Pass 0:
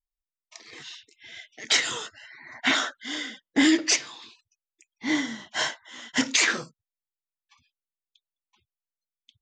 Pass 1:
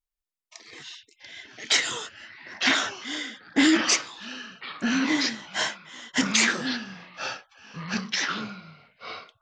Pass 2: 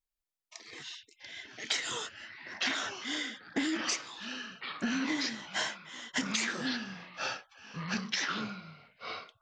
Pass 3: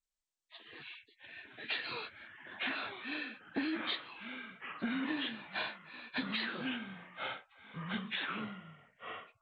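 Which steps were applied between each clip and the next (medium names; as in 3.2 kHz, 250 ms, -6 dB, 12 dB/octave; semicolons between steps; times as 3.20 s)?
ever faster or slower copies 583 ms, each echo -3 st, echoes 3, each echo -6 dB
compression 12:1, threshold -26 dBFS, peak gain reduction 11.5 dB; trim -2.5 dB
knee-point frequency compression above 1.4 kHz 1.5:1; trim -3.5 dB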